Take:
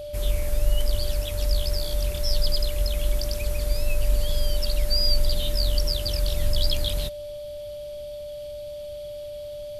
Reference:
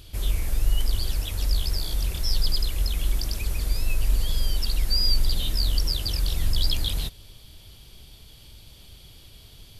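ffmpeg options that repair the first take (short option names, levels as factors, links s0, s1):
-af "bandreject=f=590:w=30"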